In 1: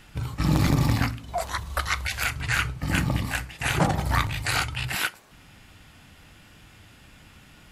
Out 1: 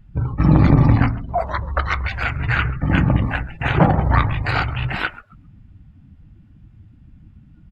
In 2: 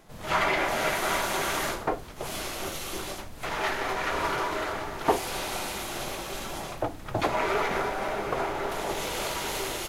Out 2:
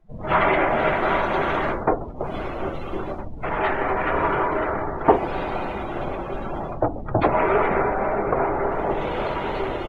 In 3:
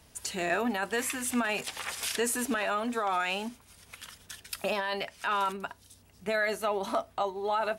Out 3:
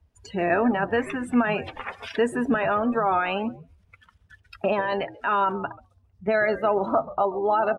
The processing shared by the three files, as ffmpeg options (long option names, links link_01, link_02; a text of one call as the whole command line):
ffmpeg -i in.wav -filter_complex "[0:a]lowpass=frequency=1200:poles=1,asplit=5[link_01][link_02][link_03][link_04][link_05];[link_02]adelay=135,afreqshift=-76,volume=-16dB[link_06];[link_03]adelay=270,afreqshift=-152,volume=-23.7dB[link_07];[link_04]adelay=405,afreqshift=-228,volume=-31.5dB[link_08];[link_05]adelay=540,afreqshift=-304,volume=-39.2dB[link_09];[link_01][link_06][link_07][link_08][link_09]amix=inputs=5:normalize=0,afftdn=noise_reduction=22:noise_floor=-44,volume=9dB" out.wav